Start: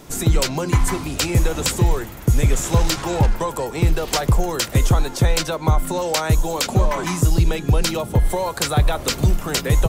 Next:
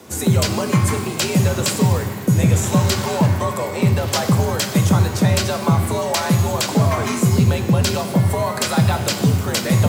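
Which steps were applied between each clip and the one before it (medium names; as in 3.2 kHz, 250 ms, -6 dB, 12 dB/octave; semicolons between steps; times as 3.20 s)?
frequency shift +66 Hz; pitch-shifted reverb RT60 1.3 s, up +12 st, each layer -8 dB, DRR 6 dB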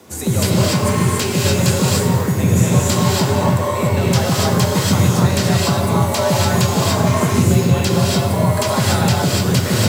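gated-style reverb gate 310 ms rising, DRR -4 dB; trim -2.5 dB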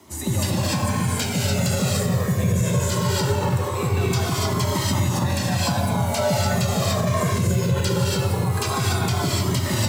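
peak limiter -8 dBFS, peak gain reduction 6 dB; Shepard-style flanger falling 0.21 Hz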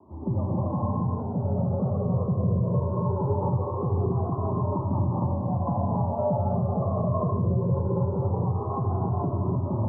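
steep low-pass 1.1 kHz 72 dB/octave; trim -3.5 dB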